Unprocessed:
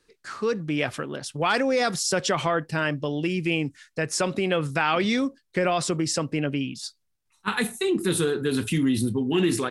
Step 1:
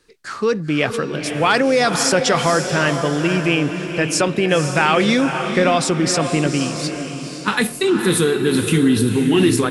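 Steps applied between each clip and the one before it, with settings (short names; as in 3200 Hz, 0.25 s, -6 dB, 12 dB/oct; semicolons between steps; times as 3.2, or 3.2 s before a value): diffused feedback echo 0.508 s, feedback 43%, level -7 dB; gain +7 dB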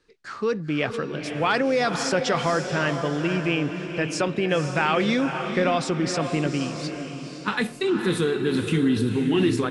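air absorption 76 m; gain -6 dB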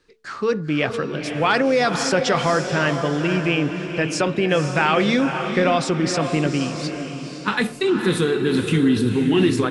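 de-hum 110.6 Hz, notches 13; gain +4 dB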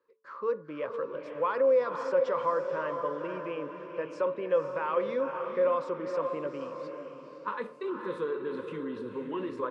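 in parallel at -2 dB: limiter -11 dBFS, peak gain reduction 6.5 dB; on the sum: double band-pass 740 Hz, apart 0.9 oct; gain -6.5 dB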